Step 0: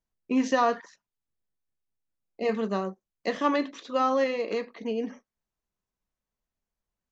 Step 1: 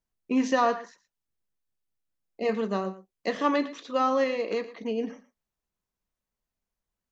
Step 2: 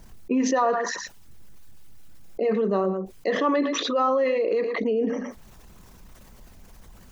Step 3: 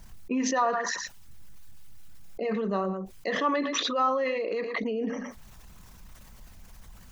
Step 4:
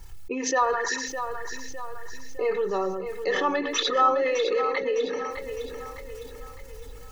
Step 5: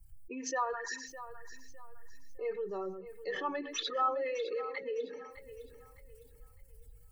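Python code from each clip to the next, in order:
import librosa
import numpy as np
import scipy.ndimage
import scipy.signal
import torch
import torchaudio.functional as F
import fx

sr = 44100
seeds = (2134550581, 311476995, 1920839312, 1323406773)

y1 = x + 10.0 ** (-16.0 / 20.0) * np.pad(x, (int(116 * sr / 1000.0), 0))[:len(x)]
y2 = fx.envelope_sharpen(y1, sr, power=1.5)
y2 = fx.env_flatten(y2, sr, amount_pct=70)
y3 = fx.peak_eq(y2, sr, hz=390.0, db=-8.0, octaves=1.6)
y4 = y3 + 0.96 * np.pad(y3, (int(2.3 * sr / 1000.0), 0))[:len(y3)]
y4 = fx.echo_feedback(y4, sr, ms=608, feedback_pct=47, wet_db=-9)
y5 = fx.bin_expand(y4, sr, power=1.5)
y5 = y5 * 10.0 ** (-9.0 / 20.0)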